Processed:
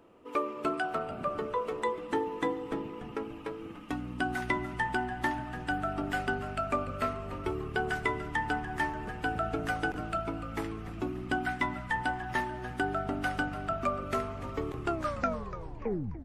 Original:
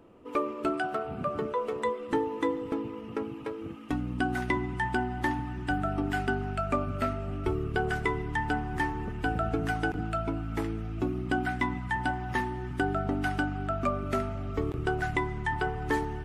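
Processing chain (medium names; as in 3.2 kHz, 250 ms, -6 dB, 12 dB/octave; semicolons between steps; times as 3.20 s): tape stop on the ending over 1.46 s; bass shelf 320 Hz -8 dB; frequency-shifting echo 292 ms, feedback 44%, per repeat -130 Hz, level -13 dB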